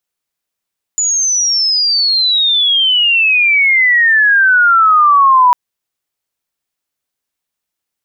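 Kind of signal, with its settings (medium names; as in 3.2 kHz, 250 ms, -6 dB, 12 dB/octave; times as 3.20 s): sweep logarithmic 7 kHz -> 970 Hz -11 dBFS -> -4.5 dBFS 4.55 s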